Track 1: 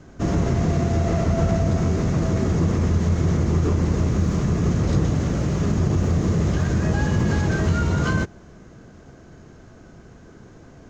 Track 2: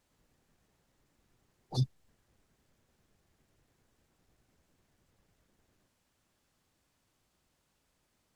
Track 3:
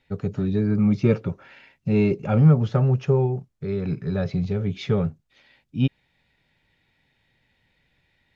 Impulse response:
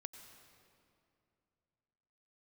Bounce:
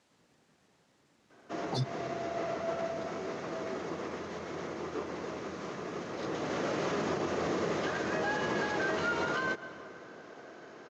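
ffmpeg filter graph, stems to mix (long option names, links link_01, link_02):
-filter_complex "[0:a]acrossover=split=350 5600:gain=0.1 1 0.178[link_01][link_02][link_03];[link_01][link_02][link_03]amix=inputs=3:normalize=0,adelay=1300,volume=-5.5dB,afade=type=in:start_time=6.19:duration=0.67:silence=0.334965,asplit=2[link_04][link_05];[link_05]volume=-4.5dB[link_06];[1:a]volume=0.5dB,asplit=3[link_07][link_08][link_09];[link_07]atrim=end=1.99,asetpts=PTS-STARTPTS,afade=type=out:start_time=1.986:duration=0.004:curve=hsin[link_10];[link_08]atrim=start=1.99:end=2.62,asetpts=PTS-STARTPTS,volume=0[link_11];[link_09]atrim=start=2.62,asetpts=PTS-STARTPTS,afade=type=in:duration=0.004:curve=hsin[link_12];[link_10][link_11][link_12]concat=n=3:v=0:a=1,asplit=2[link_13][link_14];[link_14]volume=-10dB[link_15];[3:a]atrim=start_sample=2205[link_16];[link_06][link_15]amix=inputs=2:normalize=0[link_17];[link_17][link_16]afir=irnorm=-1:irlink=0[link_18];[link_04][link_13][link_18]amix=inputs=3:normalize=0,acontrast=48,highpass=160,lowpass=7100,alimiter=limit=-23dB:level=0:latency=1:release=143"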